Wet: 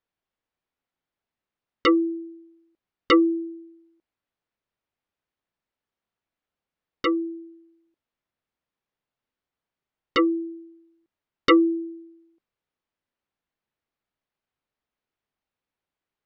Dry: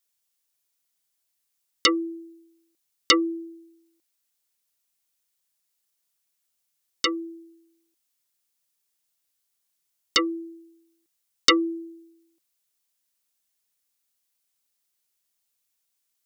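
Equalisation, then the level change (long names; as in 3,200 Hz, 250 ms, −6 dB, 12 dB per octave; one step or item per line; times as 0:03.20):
head-to-tape spacing loss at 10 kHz 38 dB
high-shelf EQ 5,000 Hz −8.5 dB
+7.5 dB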